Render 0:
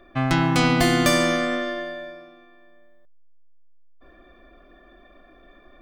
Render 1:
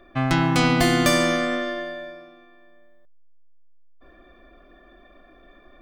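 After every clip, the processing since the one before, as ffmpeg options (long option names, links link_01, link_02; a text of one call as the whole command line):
ffmpeg -i in.wav -af anull out.wav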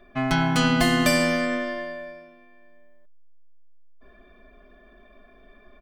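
ffmpeg -i in.wav -af "aecho=1:1:4.7:0.85,volume=-3.5dB" out.wav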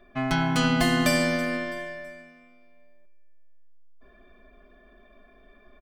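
ffmpeg -i in.wav -af "aecho=1:1:328|656|984:0.133|0.056|0.0235,volume=-2.5dB" out.wav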